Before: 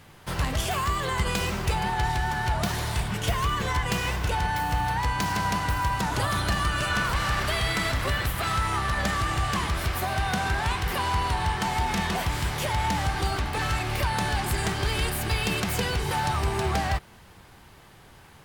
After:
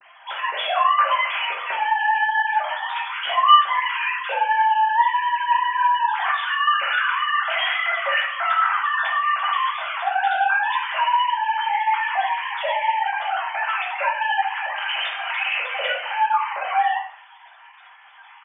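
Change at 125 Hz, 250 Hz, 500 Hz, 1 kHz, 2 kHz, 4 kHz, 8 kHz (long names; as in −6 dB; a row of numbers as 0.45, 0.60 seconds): below −40 dB, below −35 dB, −0.5 dB, +9.0 dB, +7.5 dB, +4.5 dB, below −40 dB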